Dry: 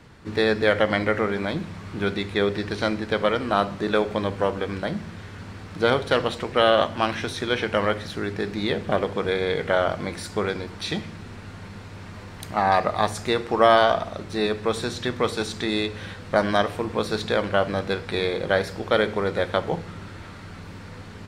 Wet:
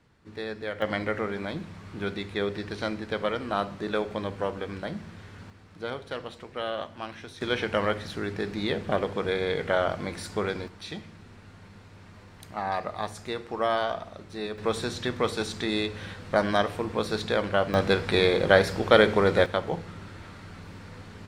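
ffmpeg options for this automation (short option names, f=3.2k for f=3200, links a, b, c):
-af "asetnsamples=n=441:p=0,asendcmd='0.82 volume volume -6.5dB;5.5 volume volume -14dB;7.41 volume volume -3.5dB;10.68 volume volume -10dB;14.58 volume volume -3dB;17.74 volume volume 3dB;19.46 volume volume -4dB',volume=-14dB"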